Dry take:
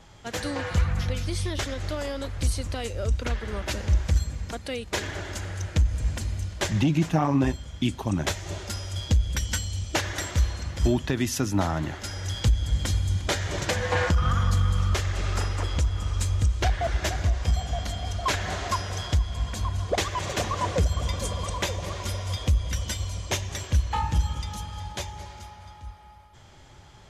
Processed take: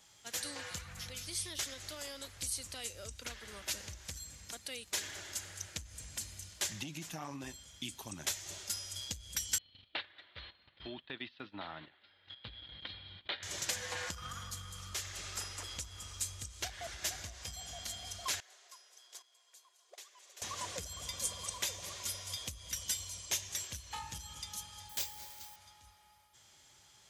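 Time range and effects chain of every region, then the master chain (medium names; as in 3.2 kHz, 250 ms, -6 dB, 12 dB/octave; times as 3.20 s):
9.58–13.43 s: steep low-pass 4.1 kHz 72 dB/octave + gate -29 dBFS, range -15 dB + peaking EQ 66 Hz -11 dB 2.7 oct
18.40–20.42 s: gate -20 dBFS, range -19 dB + brick-wall FIR high-pass 330 Hz
24.89–25.56 s: careless resampling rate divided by 4×, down none, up hold + doubling 25 ms -6 dB
whole clip: compression, threshold -22 dBFS; high-pass 110 Hz 6 dB/octave; pre-emphasis filter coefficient 0.9; trim +1 dB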